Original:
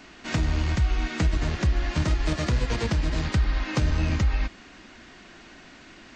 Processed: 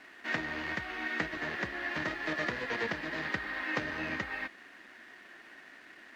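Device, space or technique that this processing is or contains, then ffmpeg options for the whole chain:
pocket radio on a weak battery: -af "highpass=320,lowpass=3500,aeval=exprs='sgn(val(0))*max(abs(val(0))-0.00119,0)':channel_layout=same,equalizer=frequency=1800:width_type=o:width=0.35:gain=11,volume=-4dB"

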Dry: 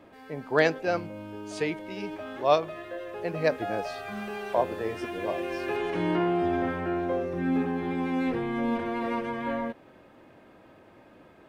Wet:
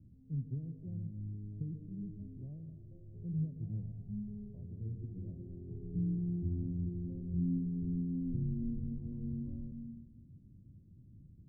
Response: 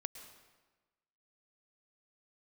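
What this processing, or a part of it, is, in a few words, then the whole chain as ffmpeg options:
club heard from the street: -filter_complex "[0:a]alimiter=limit=-21dB:level=0:latency=1:release=373,lowpass=frequency=150:width=0.5412,lowpass=frequency=150:width=1.3066[link_01];[1:a]atrim=start_sample=2205[link_02];[link_01][link_02]afir=irnorm=-1:irlink=0,volume=12dB"

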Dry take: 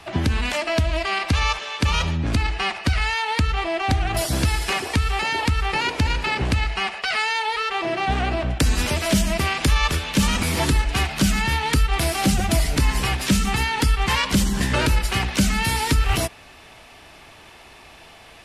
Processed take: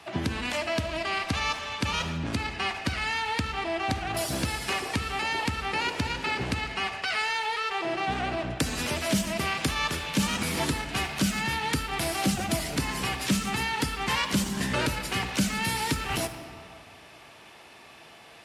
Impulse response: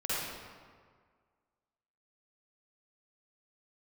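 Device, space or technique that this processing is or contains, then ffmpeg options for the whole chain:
saturated reverb return: -filter_complex "[0:a]highpass=120,asplit=2[link_01][link_02];[1:a]atrim=start_sample=2205[link_03];[link_02][link_03]afir=irnorm=-1:irlink=0,asoftclip=type=tanh:threshold=-19dB,volume=-11dB[link_04];[link_01][link_04]amix=inputs=2:normalize=0,volume=-6.5dB"

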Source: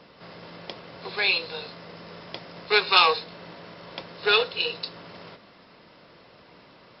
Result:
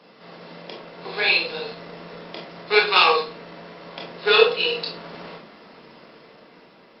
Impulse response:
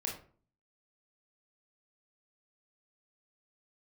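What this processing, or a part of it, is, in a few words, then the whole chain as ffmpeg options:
far-field microphone of a smart speaker: -filter_complex "[1:a]atrim=start_sample=2205[link_01];[0:a][link_01]afir=irnorm=-1:irlink=0,highpass=frequency=160:width=0.5412,highpass=frequency=160:width=1.3066,dynaudnorm=framelen=230:gausssize=11:maxgain=12dB" -ar 48000 -c:a libopus -b:a 48k

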